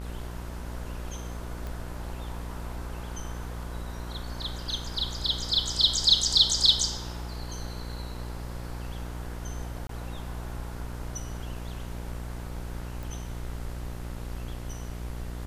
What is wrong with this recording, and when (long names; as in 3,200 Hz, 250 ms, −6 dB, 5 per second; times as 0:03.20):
mains buzz 60 Hz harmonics 36 −37 dBFS
0:01.67: click
0:09.87–0:09.89: drop-out 23 ms
0:13.03: click